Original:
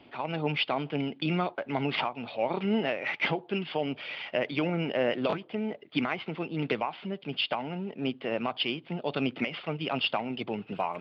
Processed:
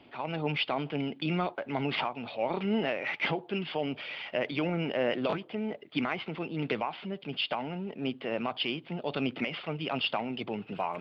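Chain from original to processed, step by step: transient shaper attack -1 dB, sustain +3 dB; gain -1.5 dB

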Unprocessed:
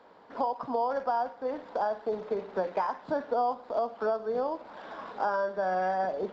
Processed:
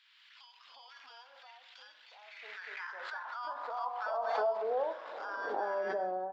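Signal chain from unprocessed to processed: ending faded out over 0.68 s; bell 1800 Hz +5.5 dB 2.6 oct; de-hum 48.58 Hz, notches 34; high-pass sweep 2900 Hz -> 300 Hz, 2.01–5.48; bands offset in time highs, lows 0.36 s, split 1100 Hz; backwards sustainer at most 28 dB/s; gain -8.5 dB

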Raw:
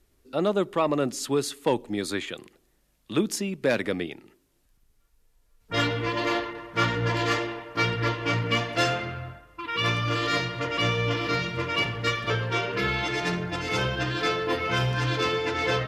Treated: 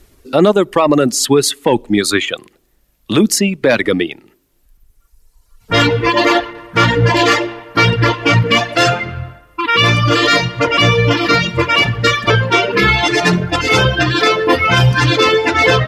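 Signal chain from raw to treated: reverb removal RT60 1.9 s; maximiser +19 dB; gain -1 dB

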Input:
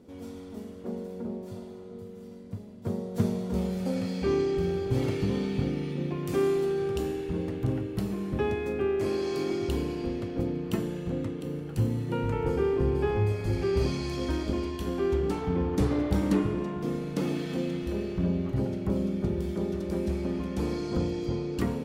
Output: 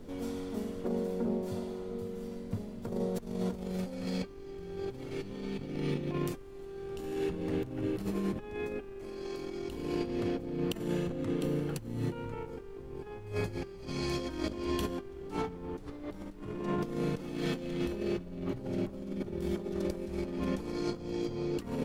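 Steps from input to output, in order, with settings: low shelf 100 Hz -9 dB; negative-ratio compressor -35 dBFS, ratio -0.5; added noise brown -51 dBFS

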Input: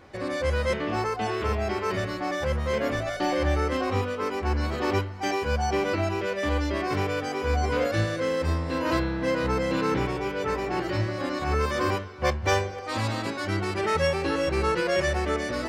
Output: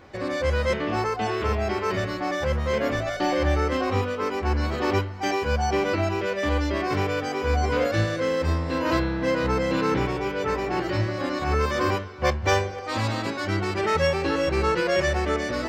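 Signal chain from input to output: bell 10000 Hz -11.5 dB 0.29 oct; gain +2 dB

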